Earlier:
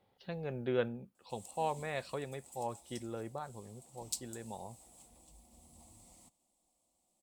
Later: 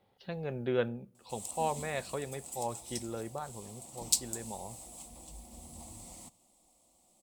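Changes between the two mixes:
background +9.5 dB
reverb: on

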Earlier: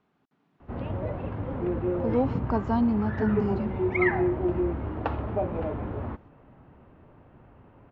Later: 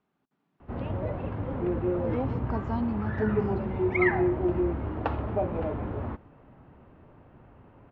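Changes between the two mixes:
speech −9.0 dB
reverb: on, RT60 0.65 s

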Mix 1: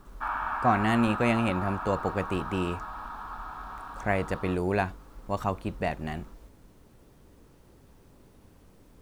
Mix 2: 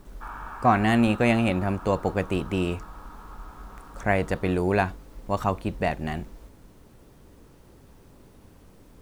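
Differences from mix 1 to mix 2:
speech +4.0 dB
background −8.0 dB

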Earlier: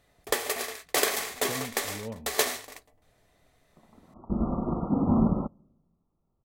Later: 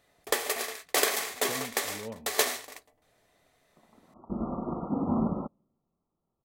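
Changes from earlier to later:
second sound: send −9.0 dB
master: add low-shelf EQ 130 Hz −12 dB

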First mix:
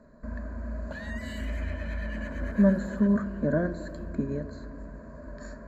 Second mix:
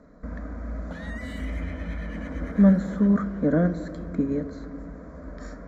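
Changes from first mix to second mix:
speech +4.0 dB
master: remove EQ curve with evenly spaced ripples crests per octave 1.4, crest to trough 11 dB

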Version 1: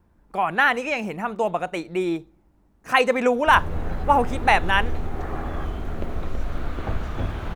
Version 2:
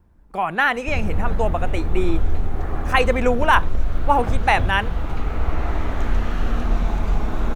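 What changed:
background: entry −2.60 s
master: add low-shelf EQ 93 Hz +8.5 dB

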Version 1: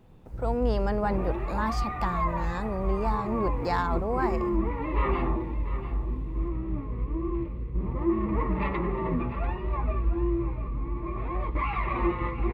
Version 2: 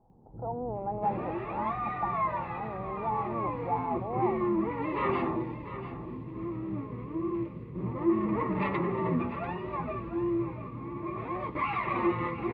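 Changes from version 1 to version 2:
speech: add transistor ladder low-pass 900 Hz, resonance 70%
first sound: add high-pass filter 110 Hz 24 dB per octave

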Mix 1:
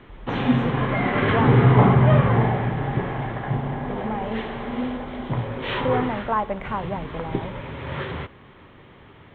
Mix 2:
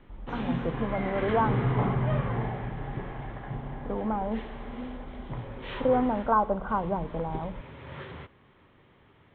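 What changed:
speech: add linear-phase brick-wall low-pass 1,600 Hz
background −11.5 dB

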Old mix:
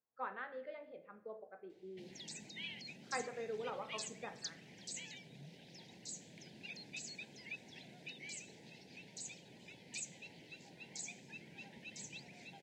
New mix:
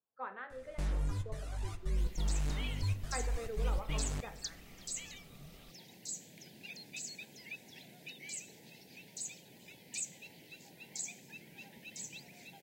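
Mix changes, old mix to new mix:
first sound: unmuted
second sound: remove high-frequency loss of the air 110 metres
master: add high-shelf EQ 6,800 Hz −6.5 dB

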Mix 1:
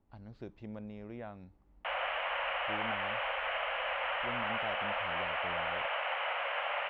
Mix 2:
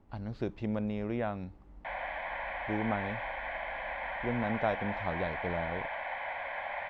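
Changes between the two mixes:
speech +11.0 dB
background: add phaser with its sweep stopped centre 1,900 Hz, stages 8

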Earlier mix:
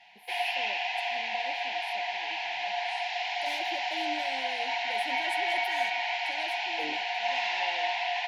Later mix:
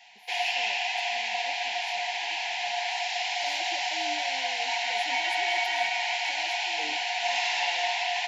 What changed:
speech −4.5 dB
background: remove high-frequency loss of the air 190 metres

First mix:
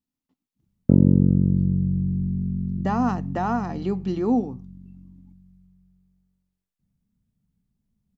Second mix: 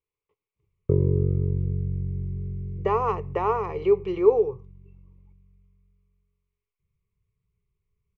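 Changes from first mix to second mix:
background: add flat-topped bell 620 Hz −9 dB 1.2 octaves
master: add drawn EQ curve 110 Hz 0 dB, 170 Hz −10 dB, 250 Hz −29 dB, 420 Hz +15 dB, 710 Hz −7 dB, 1,100 Hz +9 dB, 1,600 Hz −12 dB, 2,200 Hz +10 dB, 4,200 Hz −12 dB

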